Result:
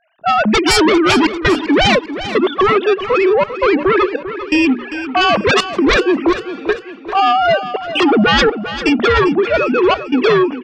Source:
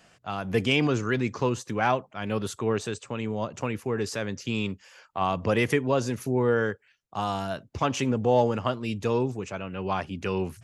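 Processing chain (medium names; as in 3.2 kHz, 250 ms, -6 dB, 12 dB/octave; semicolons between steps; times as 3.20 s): formants replaced by sine waves; hum notches 60/120/180/240/300 Hz; in parallel at +2 dB: compression 6:1, threshold -36 dBFS, peak gain reduction 19 dB; on the sum: sine folder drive 15 dB, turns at -8.5 dBFS; trance gate ".xxxxxx.xxx." 83 bpm -24 dB; on a send: feedback delay 396 ms, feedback 45%, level -12 dB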